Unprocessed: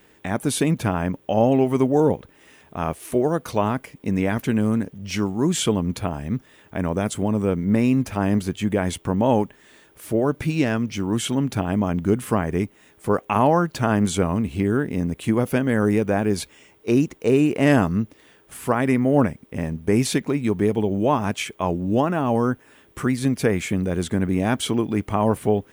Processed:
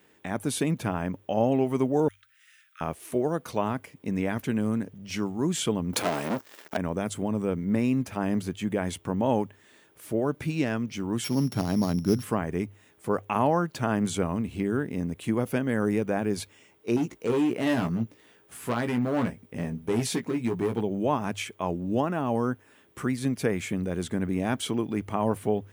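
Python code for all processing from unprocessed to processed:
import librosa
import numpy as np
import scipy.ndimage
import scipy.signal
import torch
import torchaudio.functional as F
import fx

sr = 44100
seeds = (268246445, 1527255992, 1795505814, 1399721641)

y = fx.chain(x, sr, fx.steep_highpass(hz=1300.0, slope=96),
    fx.quant_companded(bits=8), at=(2.08, 2.81))
y = fx.chain(y, sr, fx.peak_eq(hz=3100.0, db=-3.0, octaves=2.0),
    fx.leveller(passes=5),
    fx.highpass(hz=330.0, slope=12), at=(5.93, 6.77))
y = fx.chain(y, sr, fx.sample_sort(block=8),
    fx.highpass(hz=110.0, slope=12),
    fx.low_shelf(hz=150.0, db=11.0), at=(11.24, 12.23))
y = fx.chain(y, sr, fx.overload_stage(gain_db=16.5),
    fx.doubler(ms=17.0, db=-6), at=(16.96, 20.81))
y = scipy.signal.sosfilt(scipy.signal.butter(2, 78.0, 'highpass', fs=sr, output='sos'), y)
y = fx.hum_notches(y, sr, base_hz=50, count=2)
y = y * librosa.db_to_amplitude(-6.0)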